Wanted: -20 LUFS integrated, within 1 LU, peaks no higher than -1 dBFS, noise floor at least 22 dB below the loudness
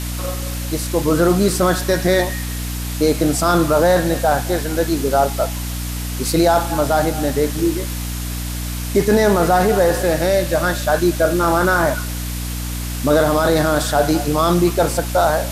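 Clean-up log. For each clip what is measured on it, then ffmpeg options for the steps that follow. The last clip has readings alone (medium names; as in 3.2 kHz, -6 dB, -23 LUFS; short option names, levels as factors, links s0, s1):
hum 60 Hz; highest harmonic 300 Hz; hum level -23 dBFS; noise floor -25 dBFS; noise floor target -40 dBFS; loudness -18.0 LUFS; peak level -3.5 dBFS; loudness target -20.0 LUFS
-> -af "bandreject=f=60:t=h:w=4,bandreject=f=120:t=h:w=4,bandreject=f=180:t=h:w=4,bandreject=f=240:t=h:w=4,bandreject=f=300:t=h:w=4"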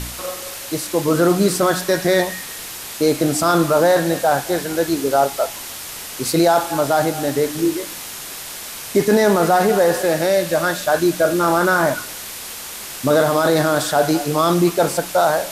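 hum not found; noise floor -32 dBFS; noise floor target -40 dBFS
-> -af "afftdn=nr=8:nf=-32"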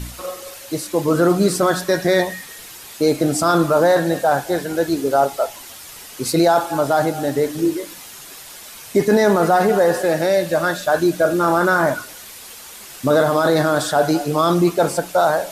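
noise floor -38 dBFS; noise floor target -40 dBFS
-> -af "afftdn=nr=6:nf=-38"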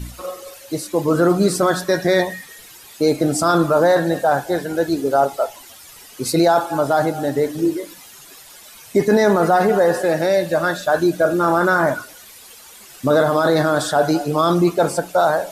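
noise floor -42 dBFS; loudness -18.0 LUFS; peak level -5.0 dBFS; loudness target -20.0 LUFS
-> -af "volume=0.794"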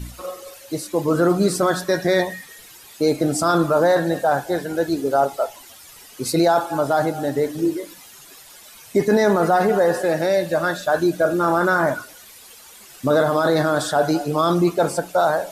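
loudness -20.0 LUFS; peak level -7.0 dBFS; noise floor -44 dBFS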